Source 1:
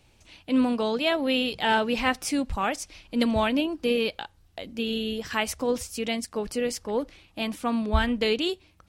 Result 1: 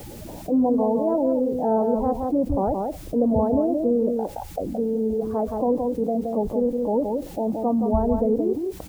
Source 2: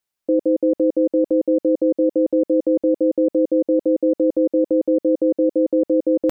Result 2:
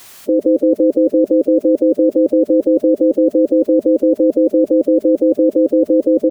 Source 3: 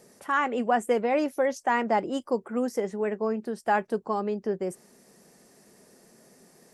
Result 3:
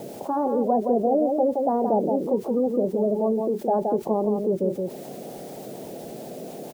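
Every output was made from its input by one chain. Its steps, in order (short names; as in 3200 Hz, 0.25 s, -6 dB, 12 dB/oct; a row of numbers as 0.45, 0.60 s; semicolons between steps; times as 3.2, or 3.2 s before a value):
bin magnitudes rounded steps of 30 dB; steep low-pass 810 Hz 36 dB/oct; dynamic EQ 100 Hz, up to +4 dB, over -41 dBFS, Q 1.5; requantised 12-bit, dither triangular; low shelf 230 Hz -5 dB; echo 0.171 s -7.5 dB; fast leveller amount 50%; gain +4 dB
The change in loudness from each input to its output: +3.5, +5.5, +4.0 LU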